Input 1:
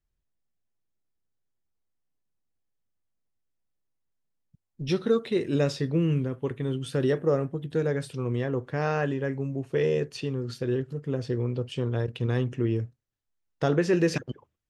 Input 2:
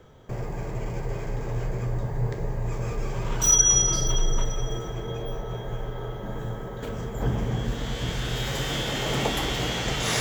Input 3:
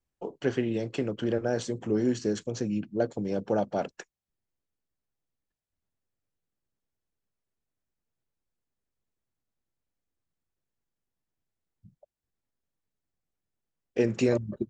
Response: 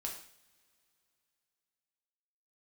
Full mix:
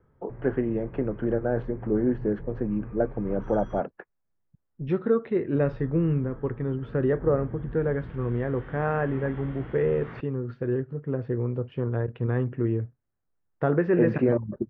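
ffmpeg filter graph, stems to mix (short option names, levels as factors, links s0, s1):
-filter_complex "[0:a]aemphasis=mode=production:type=75kf,volume=1.06[s0];[1:a]equalizer=f=670:t=o:w=1.1:g=-8.5,volume=0.316,asplit=3[s1][s2][s3];[s1]atrim=end=3.8,asetpts=PTS-STARTPTS,afade=t=out:st=3.796:d=0.004:c=hsin[s4];[s2]atrim=start=3.8:end=5.56,asetpts=PTS-STARTPTS,volume=0[s5];[s3]atrim=start=5.56,asetpts=PTS-STARTPTS,afade=t=in:d=0.004:c=hsin[s6];[s4][s5][s6]concat=n=3:v=0:a=1[s7];[2:a]volume=1.26[s8];[s0][s7][s8]amix=inputs=3:normalize=0,lowpass=f=1700:w=0.5412,lowpass=f=1700:w=1.3066"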